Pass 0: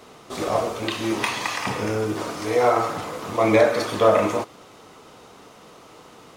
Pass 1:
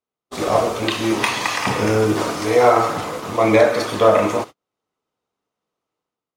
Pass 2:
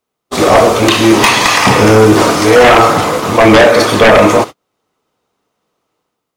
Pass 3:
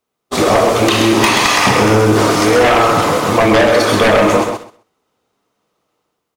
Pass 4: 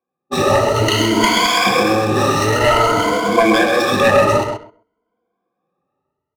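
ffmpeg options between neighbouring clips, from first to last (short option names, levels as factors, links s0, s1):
-af "agate=range=0.00631:threshold=0.0224:ratio=16:detection=peak,dynaudnorm=f=110:g=7:m=2.82"
-af "aeval=exprs='0.891*sin(PI/2*3.16*val(0)/0.891)':c=same"
-filter_complex "[0:a]acompressor=threshold=0.398:ratio=6,asplit=2[s0][s1];[s1]aecho=0:1:130|260|390:0.473|0.071|0.0106[s2];[s0][s2]amix=inputs=2:normalize=0,volume=0.891"
-af "afftfilt=real='re*pow(10,21/40*sin(2*PI*(1.8*log(max(b,1)*sr/1024/100)/log(2)-(0.54)*(pts-256)/sr)))':imag='im*pow(10,21/40*sin(2*PI*(1.8*log(max(b,1)*sr/1024/100)/log(2)-(0.54)*(pts-256)/sr)))':win_size=1024:overlap=0.75,adynamicsmooth=sensitivity=2:basefreq=1500,volume=0.447"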